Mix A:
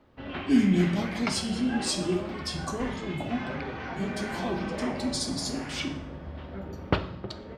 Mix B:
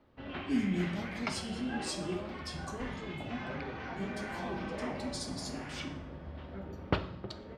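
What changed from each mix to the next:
speech -9.5 dB; background -5.0 dB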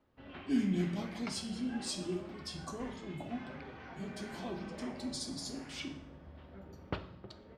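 background -8.0 dB

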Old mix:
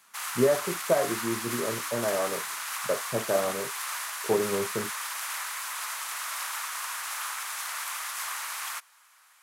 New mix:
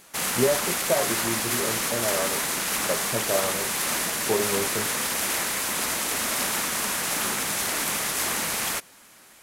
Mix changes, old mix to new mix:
background: remove ladder high-pass 910 Hz, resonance 45%; master: remove HPF 110 Hz 12 dB/oct

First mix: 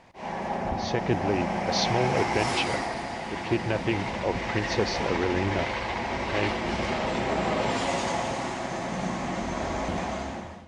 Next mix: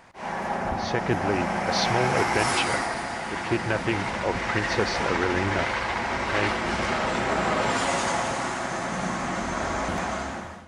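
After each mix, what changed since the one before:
background: remove air absorption 67 m; master: add bell 1400 Hz +9 dB 0.73 oct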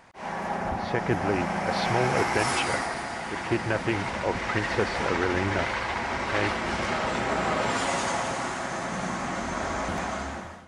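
speech: add LPF 3000 Hz; reverb: off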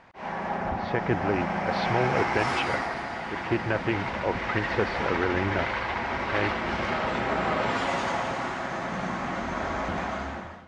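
master: add LPF 3900 Hz 12 dB/oct

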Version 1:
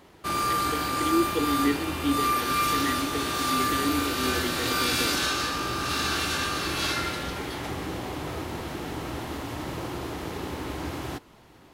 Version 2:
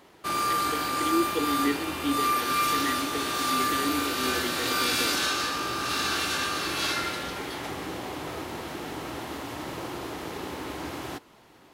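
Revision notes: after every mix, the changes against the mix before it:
master: add low shelf 140 Hz -11.5 dB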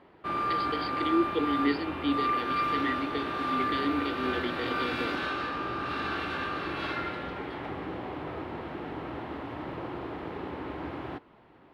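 background: add air absorption 470 m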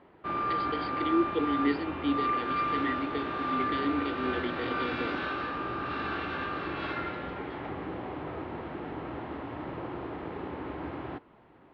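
master: add air absorption 180 m

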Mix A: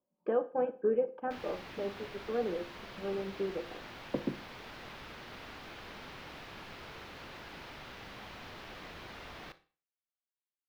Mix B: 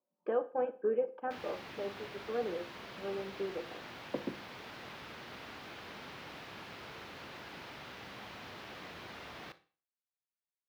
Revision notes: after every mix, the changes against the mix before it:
speech: add HPF 370 Hz 6 dB/oct; background: add HPF 90 Hz 12 dB/oct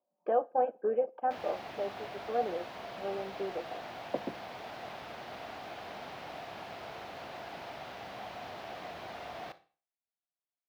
speech: send -11.0 dB; master: add bell 700 Hz +13.5 dB 0.55 oct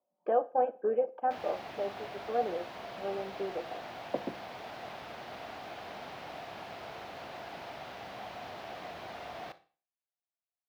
speech: send +6.5 dB

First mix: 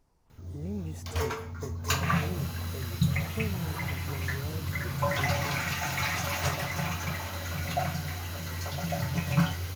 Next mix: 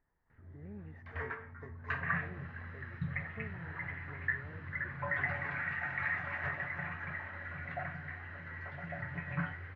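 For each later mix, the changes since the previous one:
master: add ladder low-pass 1900 Hz, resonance 80%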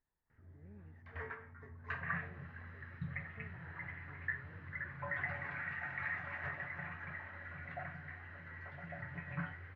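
speech -10.0 dB; background -5.0 dB

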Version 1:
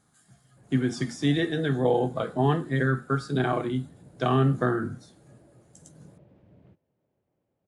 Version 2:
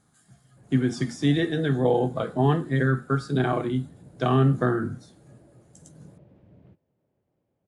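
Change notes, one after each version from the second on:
master: add low shelf 400 Hz +3 dB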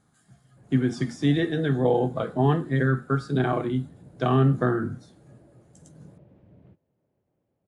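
master: add high shelf 4500 Hz -5.5 dB

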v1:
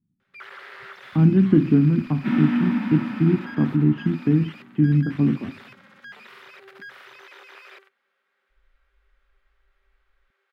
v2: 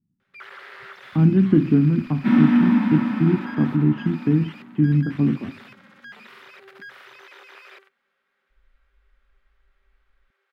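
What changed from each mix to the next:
second sound: send +6.5 dB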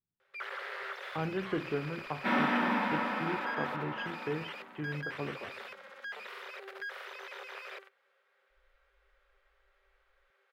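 speech: add bell 230 Hz -9.5 dB 3 oct; master: add resonant low shelf 350 Hz -11 dB, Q 3

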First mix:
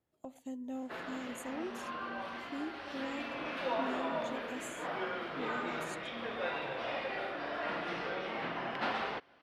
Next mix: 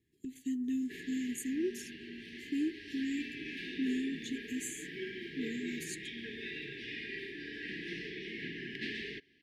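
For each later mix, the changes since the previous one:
speech +7.5 dB; master: add brick-wall FIR band-stop 450–1600 Hz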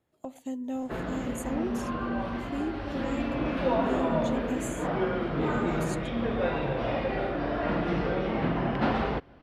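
background: remove HPF 1500 Hz 6 dB/oct; master: remove brick-wall FIR band-stop 450–1600 Hz

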